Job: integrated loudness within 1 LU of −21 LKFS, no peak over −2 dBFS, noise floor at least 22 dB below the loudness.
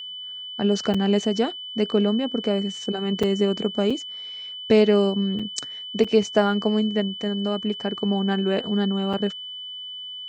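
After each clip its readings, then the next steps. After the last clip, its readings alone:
number of dropouts 6; longest dropout 5.0 ms; interfering tone 3,000 Hz; level of the tone −33 dBFS; integrated loudness −23.5 LKFS; sample peak −6.0 dBFS; target loudness −21.0 LKFS
→ repair the gap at 0:00.94/0:03.23/0:03.90/0:05.39/0:06.04/0:09.13, 5 ms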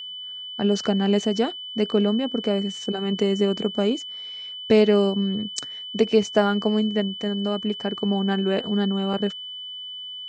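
number of dropouts 0; interfering tone 3,000 Hz; level of the tone −33 dBFS
→ notch filter 3,000 Hz, Q 30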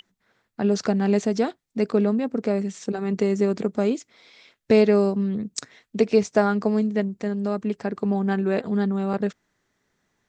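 interfering tone none found; integrated loudness −23.5 LKFS; sample peak −5.5 dBFS; target loudness −21.0 LKFS
→ level +2.5 dB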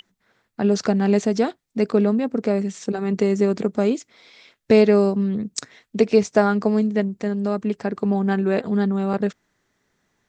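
integrated loudness −21.0 LKFS; sample peak −3.0 dBFS; background noise floor −74 dBFS

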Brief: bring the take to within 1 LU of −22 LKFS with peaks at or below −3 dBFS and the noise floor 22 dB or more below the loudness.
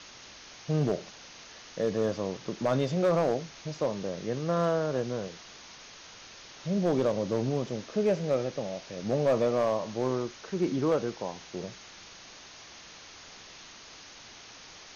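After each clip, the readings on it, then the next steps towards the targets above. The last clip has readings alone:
share of clipped samples 0.5%; peaks flattened at −19.0 dBFS; background noise floor −49 dBFS; target noise floor −52 dBFS; integrated loudness −30.0 LKFS; sample peak −19.0 dBFS; target loudness −22.0 LKFS
→ clipped peaks rebuilt −19 dBFS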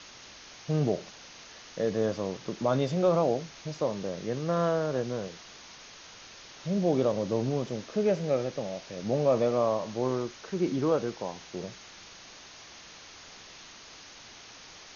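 share of clipped samples 0.0%; background noise floor −49 dBFS; target noise floor −52 dBFS
→ broadband denoise 6 dB, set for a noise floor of −49 dBFS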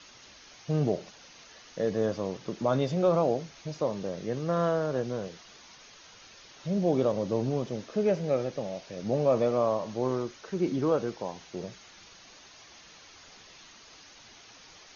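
background noise floor −53 dBFS; integrated loudness −29.5 LKFS; sample peak −13.5 dBFS; target loudness −22.0 LKFS
→ level +7.5 dB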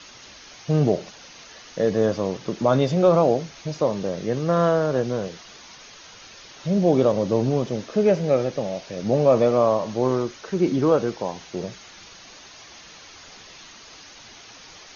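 integrated loudness −22.0 LKFS; sample peak −6.0 dBFS; background noise floor −45 dBFS

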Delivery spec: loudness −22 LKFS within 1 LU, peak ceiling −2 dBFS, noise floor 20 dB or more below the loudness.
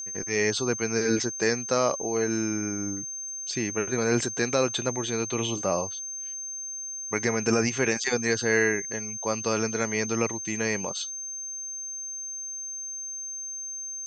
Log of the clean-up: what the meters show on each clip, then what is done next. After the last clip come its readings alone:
interfering tone 6,300 Hz; level of the tone −33 dBFS; integrated loudness −27.5 LKFS; sample peak −10.0 dBFS; target loudness −22.0 LKFS
→ notch filter 6,300 Hz, Q 30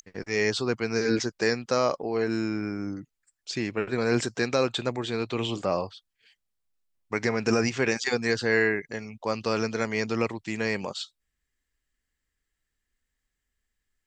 interfering tone none found; integrated loudness −27.5 LKFS; sample peak −10.5 dBFS; target loudness −22.0 LKFS
→ level +5.5 dB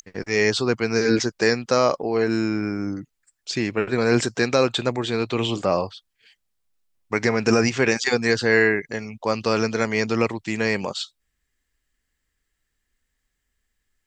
integrated loudness −22.0 LKFS; sample peak −5.0 dBFS; background noise floor −77 dBFS

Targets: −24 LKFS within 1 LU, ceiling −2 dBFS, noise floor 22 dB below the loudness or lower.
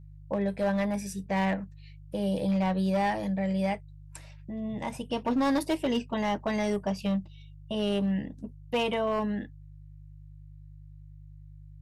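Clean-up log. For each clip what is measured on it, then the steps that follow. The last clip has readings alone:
share of clipped samples 1.6%; peaks flattened at −21.5 dBFS; mains hum 50 Hz; hum harmonics up to 150 Hz; level of the hum −46 dBFS; integrated loudness −30.0 LKFS; sample peak −21.5 dBFS; target loudness −24.0 LKFS
→ clipped peaks rebuilt −21.5 dBFS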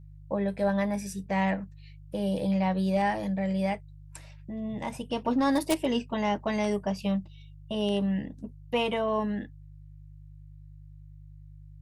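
share of clipped samples 0.0%; mains hum 50 Hz; hum harmonics up to 150 Hz; level of the hum −46 dBFS
→ hum removal 50 Hz, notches 3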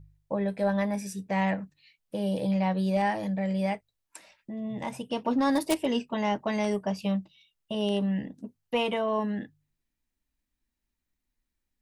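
mains hum none found; integrated loudness −29.5 LKFS; sample peak −12.5 dBFS; target loudness −24.0 LKFS
→ level +5.5 dB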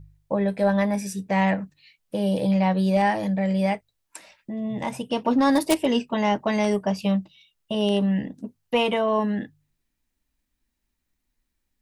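integrated loudness −24.0 LKFS; sample peak −7.0 dBFS; background noise floor −78 dBFS

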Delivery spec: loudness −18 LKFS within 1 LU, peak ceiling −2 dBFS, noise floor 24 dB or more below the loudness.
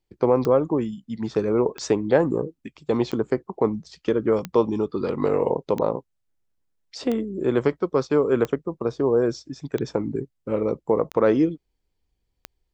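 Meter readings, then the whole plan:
number of clicks 10; integrated loudness −24.0 LKFS; sample peak −6.5 dBFS; target loudness −18.0 LKFS
→ click removal
level +6 dB
brickwall limiter −2 dBFS

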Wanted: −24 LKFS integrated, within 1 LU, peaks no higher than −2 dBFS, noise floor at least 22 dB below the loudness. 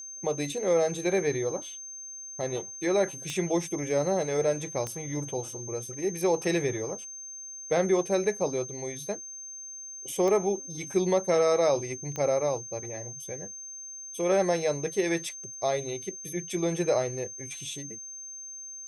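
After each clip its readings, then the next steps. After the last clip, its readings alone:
number of clicks 4; interfering tone 6,300 Hz; level of the tone −39 dBFS; integrated loudness −29.5 LKFS; sample peak −13.5 dBFS; target loudness −24.0 LKFS
→ click removal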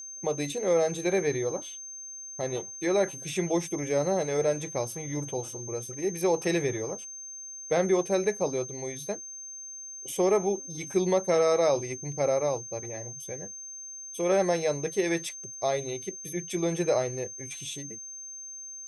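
number of clicks 0; interfering tone 6,300 Hz; level of the tone −39 dBFS
→ notch filter 6,300 Hz, Q 30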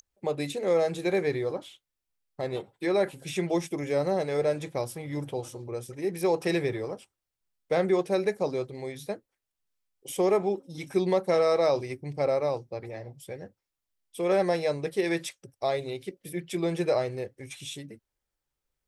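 interfering tone none found; integrated loudness −29.0 LKFS; sample peak −14.0 dBFS; target loudness −24.0 LKFS
→ level +5 dB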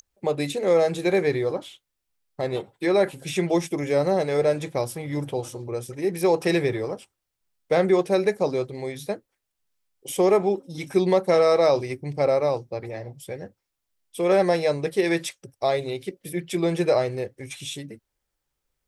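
integrated loudness −24.0 LKFS; sample peak −9.0 dBFS; background noise floor −81 dBFS

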